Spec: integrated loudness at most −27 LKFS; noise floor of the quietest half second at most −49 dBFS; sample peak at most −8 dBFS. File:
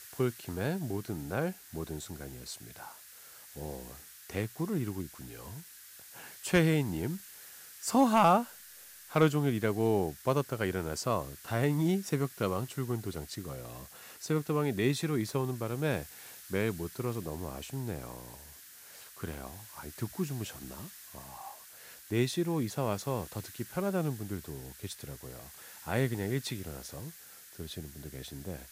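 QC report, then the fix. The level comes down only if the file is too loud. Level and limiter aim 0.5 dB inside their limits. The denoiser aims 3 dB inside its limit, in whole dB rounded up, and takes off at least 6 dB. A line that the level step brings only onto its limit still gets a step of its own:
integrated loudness −33.0 LKFS: in spec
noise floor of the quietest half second −52 dBFS: in spec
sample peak −14.0 dBFS: in spec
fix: no processing needed

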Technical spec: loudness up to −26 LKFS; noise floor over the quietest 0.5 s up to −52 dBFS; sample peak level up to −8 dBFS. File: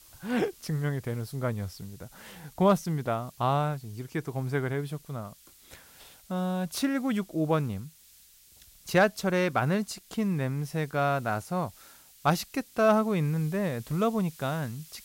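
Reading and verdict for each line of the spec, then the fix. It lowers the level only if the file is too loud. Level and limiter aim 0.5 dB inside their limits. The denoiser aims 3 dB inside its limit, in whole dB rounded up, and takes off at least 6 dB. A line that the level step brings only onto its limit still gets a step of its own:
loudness −29.0 LKFS: in spec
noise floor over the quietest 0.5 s −57 dBFS: in spec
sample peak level −13.0 dBFS: in spec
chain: no processing needed

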